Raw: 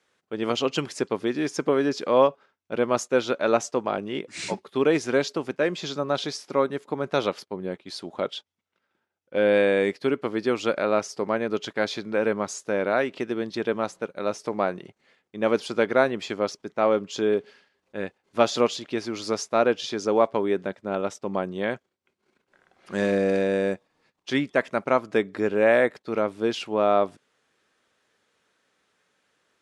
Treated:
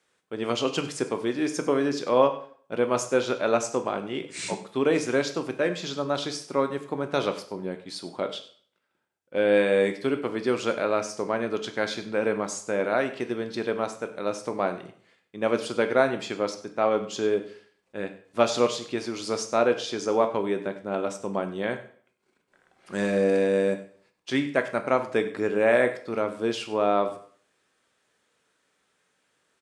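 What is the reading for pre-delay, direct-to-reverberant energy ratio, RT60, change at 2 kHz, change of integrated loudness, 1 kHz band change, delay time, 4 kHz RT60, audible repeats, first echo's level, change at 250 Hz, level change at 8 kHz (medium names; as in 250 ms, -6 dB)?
6 ms, 7.0 dB, 0.50 s, -1.0 dB, -1.5 dB, -1.5 dB, 97 ms, 0.45 s, 1, -17.5 dB, -1.5 dB, +1.0 dB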